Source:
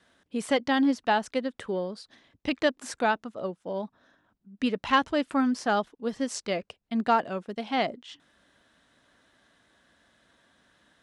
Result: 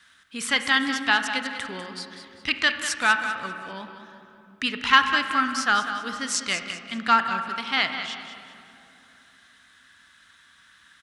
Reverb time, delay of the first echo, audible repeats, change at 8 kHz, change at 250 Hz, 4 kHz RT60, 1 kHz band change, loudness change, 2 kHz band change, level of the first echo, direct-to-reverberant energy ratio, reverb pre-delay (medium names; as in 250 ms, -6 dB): 2.8 s, 196 ms, 3, +10.5 dB, -5.0 dB, 1.5 s, +3.5 dB, +5.0 dB, +11.0 dB, -11.0 dB, 6.0 dB, 27 ms